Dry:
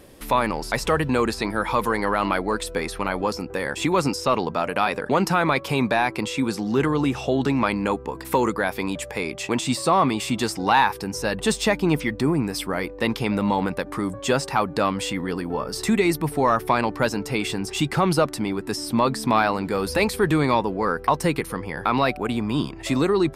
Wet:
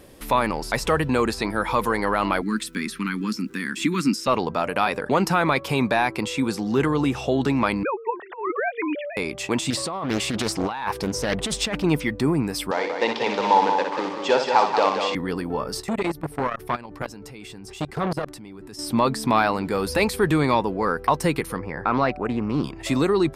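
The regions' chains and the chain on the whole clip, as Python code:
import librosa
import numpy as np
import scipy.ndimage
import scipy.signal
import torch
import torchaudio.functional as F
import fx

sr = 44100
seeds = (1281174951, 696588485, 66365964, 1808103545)

y = fx.cheby1_bandstop(x, sr, low_hz=270.0, high_hz=1500.0, order=2, at=(2.41, 4.26), fade=0.02)
y = fx.low_shelf_res(y, sr, hz=140.0, db=-14.0, q=3.0, at=(2.41, 4.26), fade=0.02)
y = fx.dmg_crackle(y, sr, seeds[0], per_s=570.0, level_db=-53.0, at=(2.41, 4.26), fade=0.02)
y = fx.chain(y, sr, fx.sine_speech(),
    fx.over_compress(threshold_db=-24.0, ratio=-0.5), at=(7.83, 9.17))
y = fx.chain(y, sr, fx.over_compress(threshold_db=-25.0, ratio=-1.0),
    fx.high_shelf(hz=12000.0, db=-8.5),
    fx.doppler_dist(depth_ms=0.63), at=(9.7, 11.84))
y = fx.chain(y, sr, fx.quant_companded(bits=4),
    fx.cabinet(low_hz=380.0, low_slope=12, high_hz=5300.0, hz=(480.0, 890.0, 1300.0), db=(5, 10, -4)),
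    fx.echo_heads(ms=61, heads='first and third', feedback_pct=43, wet_db=-7.0), at=(12.71, 15.15))
y = fx.chain(y, sr, fx.low_shelf(hz=210.0, db=4.5),
    fx.level_steps(step_db=20),
    fx.transformer_sat(knee_hz=920.0), at=(15.8, 18.79))
y = fx.chain(y, sr, fx.lowpass(hz=4400.0, slope=12),
    fx.peak_eq(hz=3200.0, db=-15.0, octaves=0.5),
    fx.doppler_dist(depth_ms=0.22), at=(21.58, 22.64))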